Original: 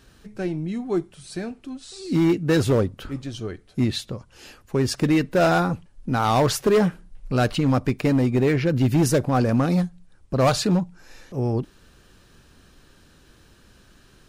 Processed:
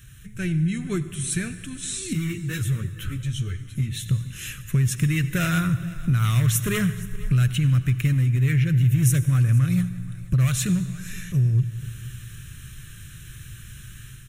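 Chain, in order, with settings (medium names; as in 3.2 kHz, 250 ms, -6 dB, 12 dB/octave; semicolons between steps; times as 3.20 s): static phaser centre 2 kHz, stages 4; level rider gain up to 7 dB; ten-band graphic EQ 125 Hz +12 dB, 250 Hz -11 dB, 500 Hz -10 dB, 2 kHz +3 dB, 4 kHz +4 dB; compression 4:1, threshold -24 dBFS, peak gain reduction 17 dB; tone controls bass +4 dB, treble +13 dB; delay 472 ms -20 dB; on a send at -13 dB: reverberation RT60 2.2 s, pre-delay 73 ms; 2.13–4.06 s: on the sum: three-phase chorus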